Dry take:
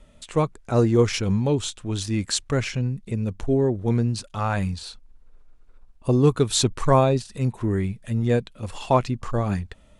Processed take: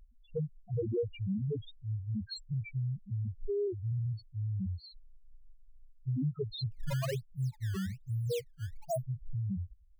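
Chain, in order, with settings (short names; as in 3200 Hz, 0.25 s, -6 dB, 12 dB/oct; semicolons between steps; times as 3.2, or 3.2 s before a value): loudest bins only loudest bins 1; compressor 2.5:1, threshold -33 dBFS, peak gain reduction 8.5 dB; 6.72–9.04 decimation with a swept rate 16×, swing 160% 1.2 Hz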